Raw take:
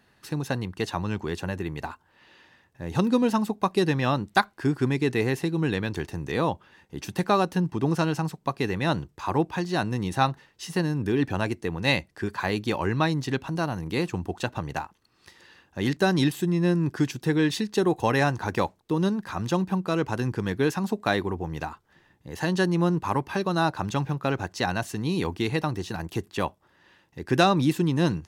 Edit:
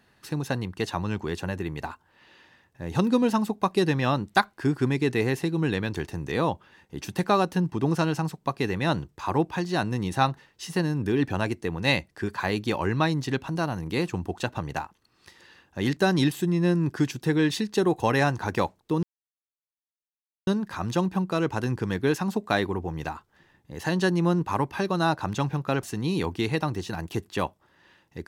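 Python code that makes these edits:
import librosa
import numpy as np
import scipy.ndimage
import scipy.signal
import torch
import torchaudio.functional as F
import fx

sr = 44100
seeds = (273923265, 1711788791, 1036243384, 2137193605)

y = fx.edit(x, sr, fx.insert_silence(at_s=19.03, length_s=1.44),
    fx.cut(start_s=24.39, length_s=0.45), tone=tone)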